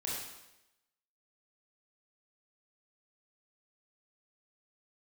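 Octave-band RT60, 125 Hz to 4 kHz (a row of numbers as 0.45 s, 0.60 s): 0.85 s, 0.90 s, 0.95 s, 0.90 s, 0.90 s, 0.90 s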